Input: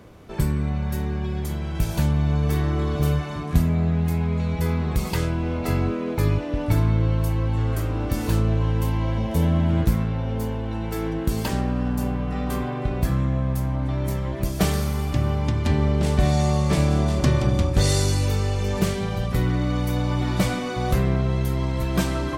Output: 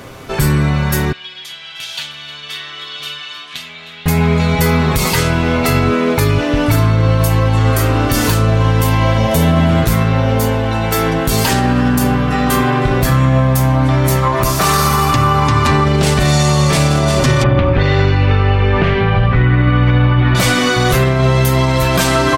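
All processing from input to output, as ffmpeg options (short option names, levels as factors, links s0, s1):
-filter_complex "[0:a]asettb=1/sr,asplit=3[s0][s1][s2];[s0]atrim=end=1.124[s3];[s1]atrim=start=1.12:end=4.06,asetpts=PTS-STARTPTS,afade=t=in:d=0.004:c=qsin,afade=t=out:st=2.936:d=0.004:c=qsin,bandpass=f=3300:t=q:w=2.9,aecho=1:1:309:0.141,atrim=end_sample=129654[s4];[s2]atrim=start=4.056[s5];[s3][s4]acrossfade=d=0.004:c1=hsin:c2=qsin[s6];[s6][s5]acrossfade=d=0.004:c1=qsin:c2=hsin,asettb=1/sr,asplit=3[s7][s8][s9];[s7]atrim=end=14.224[s10];[s8]atrim=start=14.22:end=15.85,asetpts=PTS-STARTPTS,afade=t=in:d=0.004:c=qsin,afade=t=out:st=1.626:d=0.004:c=qsin,equalizer=f=1100:w=2.7:g=11.5,bandreject=f=3200:w=21[s11];[s9]atrim=start=15.846[s12];[s10][s11]acrossfade=d=0.004:c1=hsin:c2=qsin[s13];[s13][s12]acrossfade=d=0.004:c1=qsin:c2=hsin,asettb=1/sr,asplit=3[s14][s15][s16];[s14]atrim=end=17.434[s17];[s15]atrim=start=17.43:end=20.35,asetpts=PTS-STARTPTS,afade=t=in:d=0.004:c=qsin,afade=t=out:st=2.916:d=0.004:c=qsin,lowpass=f=2700:w=0.5412,lowpass=f=2700:w=1.3066,asubboost=boost=2.5:cutoff=170[s18];[s16]atrim=start=20.346[s19];[s17][s18]acrossfade=d=0.004:c1=hsin:c2=qsin[s20];[s20][s19]acrossfade=d=0.004:c1=qsin:c2=hsin,tiltshelf=f=660:g=-4.5,aecho=1:1:7.5:0.46,alimiter=level_in=7.08:limit=0.891:release=50:level=0:latency=1,volume=0.75"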